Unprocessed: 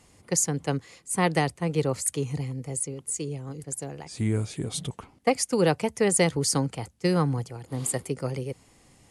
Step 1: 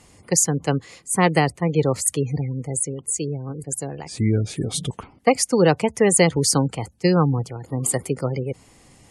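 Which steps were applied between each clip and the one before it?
spectral gate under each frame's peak -30 dB strong; trim +6 dB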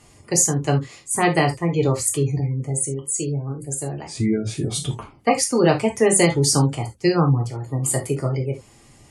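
gated-style reverb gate 100 ms falling, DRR 1 dB; trim -2 dB

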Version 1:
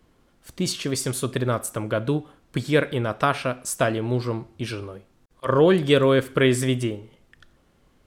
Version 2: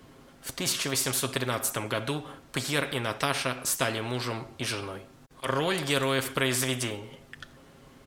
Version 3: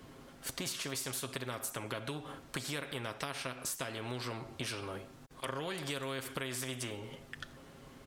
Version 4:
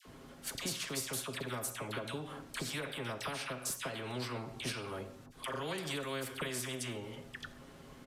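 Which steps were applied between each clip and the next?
high-pass 79 Hz 6 dB/octave; comb 7.4 ms, depth 42%; spectrum-flattening compressor 2:1; trim -4.5 dB
compression, threshold -35 dBFS, peak gain reduction 13.5 dB; trim -1 dB
phase dispersion lows, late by 57 ms, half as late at 1.1 kHz; on a send at -14 dB: reverberation RT60 0.55 s, pre-delay 5 ms; on the sum: resampled via 32 kHz

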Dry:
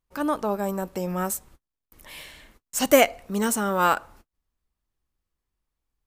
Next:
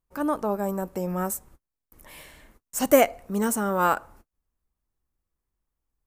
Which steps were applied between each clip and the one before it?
peaking EQ 3.6 kHz -8.5 dB 1.7 oct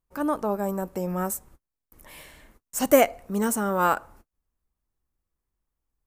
no audible change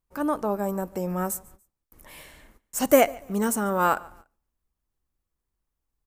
feedback delay 144 ms, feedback 33%, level -24 dB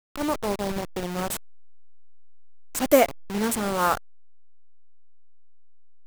send-on-delta sampling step -25 dBFS

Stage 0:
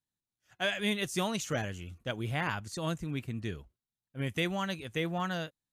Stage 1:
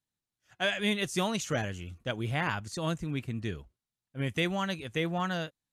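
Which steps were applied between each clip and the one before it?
Bessel low-pass 11 kHz, order 2; trim +2 dB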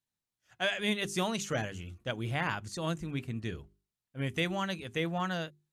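hum notches 50/100/150/200/250/300/350/400 Hz; trim -1.5 dB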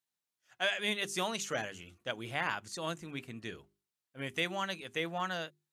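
high-pass 460 Hz 6 dB/octave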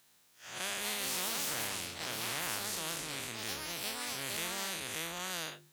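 spectral blur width 98 ms; ever faster or slower copies 364 ms, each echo +4 st, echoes 2, each echo -6 dB; spectrum-flattening compressor 4:1

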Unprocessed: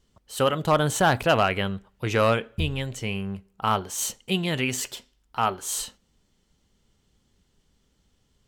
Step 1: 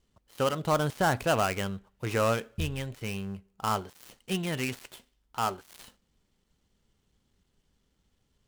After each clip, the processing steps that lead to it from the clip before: dead-time distortion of 0.094 ms; trim -5 dB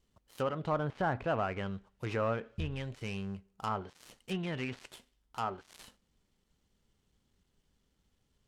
low-pass that closes with the level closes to 1.9 kHz, closed at -24.5 dBFS; in parallel at -2.5 dB: peak limiter -28.5 dBFS, peak gain reduction 12 dB; on the sum: trim -7.5 dB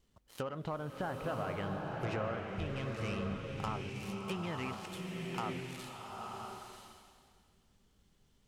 compression, threshold -37 dBFS, peak gain reduction 10 dB; swelling reverb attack 980 ms, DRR 0 dB; trim +1.5 dB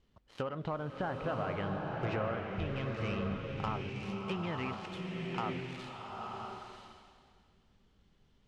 low-pass 4.1 kHz 12 dB/octave; trim +2 dB

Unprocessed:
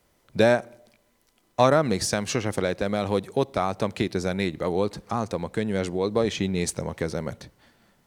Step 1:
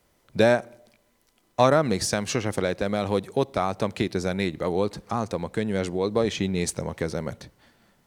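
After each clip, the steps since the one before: no audible change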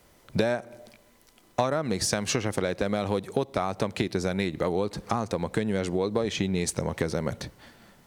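compression 6:1, threshold -30 dBFS, peak gain reduction 16.5 dB; trim +7 dB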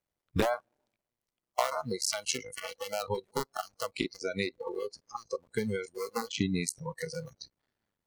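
cycle switcher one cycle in 2, muted; spectral noise reduction 28 dB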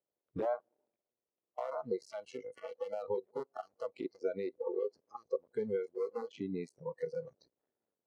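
peak limiter -21.5 dBFS, peak gain reduction 9.5 dB; band-pass filter 460 Hz, Q 1.6; trim +1.5 dB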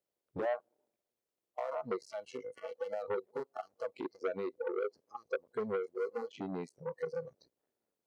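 transformer saturation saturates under 950 Hz; trim +1.5 dB

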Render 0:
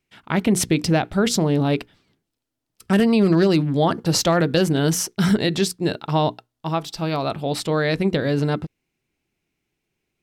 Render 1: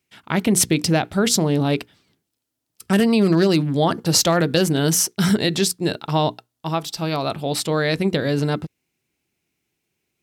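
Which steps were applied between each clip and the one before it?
high-pass 61 Hz; treble shelf 4.9 kHz +8 dB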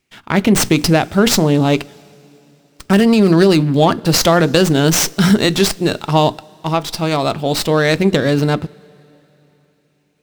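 two-slope reverb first 0.24 s, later 3.5 s, from -18 dB, DRR 17.5 dB; loudness maximiser +7.5 dB; sliding maximum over 3 samples; trim -1 dB

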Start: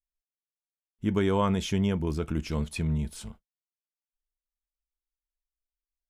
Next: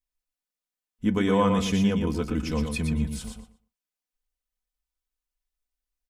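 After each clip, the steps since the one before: comb 4 ms, depth 63%; on a send: feedback delay 119 ms, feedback 17%, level -6 dB; on the sum: trim +1.5 dB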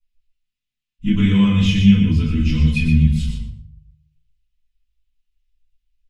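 FFT filter 140 Hz 0 dB, 500 Hz -24 dB, 1 kHz -20 dB, 2.7 kHz +1 dB, 10 kHz -16 dB; reverberation RT60 0.50 s, pre-delay 4 ms, DRR -9.5 dB; trim -2.5 dB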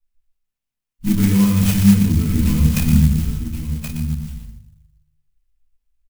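on a send: delay 1075 ms -9 dB; on the sum: sampling jitter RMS 0.084 ms

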